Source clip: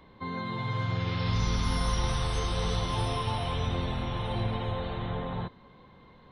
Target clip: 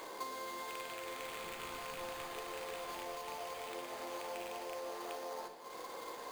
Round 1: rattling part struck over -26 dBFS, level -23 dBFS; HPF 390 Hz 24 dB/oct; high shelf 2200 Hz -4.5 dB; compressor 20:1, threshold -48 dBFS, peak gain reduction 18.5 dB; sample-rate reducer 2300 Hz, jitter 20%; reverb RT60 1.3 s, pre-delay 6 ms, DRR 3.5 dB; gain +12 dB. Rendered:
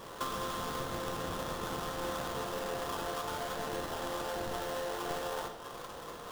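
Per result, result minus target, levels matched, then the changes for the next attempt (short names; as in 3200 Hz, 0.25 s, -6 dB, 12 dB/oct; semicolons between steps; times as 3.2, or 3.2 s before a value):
sample-rate reducer: distortion +11 dB; compressor: peak gain reduction -6.5 dB
change: sample-rate reducer 5600 Hz, jitter 20%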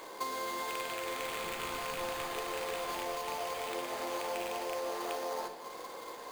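compressor: peak gain reduction -6.5 dB
change: compressor 20:1, threshold -55 dBFS, peak gain reduction 25.5 dB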